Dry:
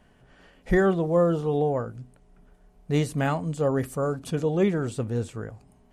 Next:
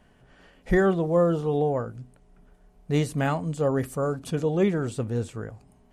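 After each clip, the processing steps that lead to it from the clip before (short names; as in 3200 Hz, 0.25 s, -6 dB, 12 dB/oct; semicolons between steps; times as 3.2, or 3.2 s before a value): nothing audible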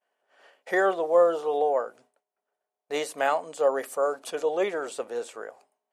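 ladder high-pass 450 Hz, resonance 30%; expander -58 dBFS; gain +8.5 dB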